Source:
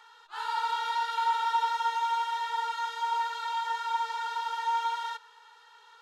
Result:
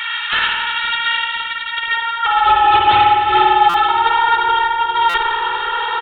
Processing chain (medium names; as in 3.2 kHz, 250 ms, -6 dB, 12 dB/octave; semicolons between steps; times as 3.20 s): compressor with a negative ratio -41 dBFS, ratio -1; high-pass sweep 2.2 kHz -> 170 Hz, 1.77–4.33 s; 2.26–3.89 s: frequency shift -86 Hz; sine folder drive 13 dB, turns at -18 dBFS; bucket-brigade echo 515 ms, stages 2048, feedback 72%, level -11 dB; spring tank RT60 1.6 s, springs 51 ms, chirp 50 ms, DRR -1.5 dB; resampled via 8 kHz; buffer glitch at 3.69/5.09 s, samples 256, times 8; trim +6.5 dB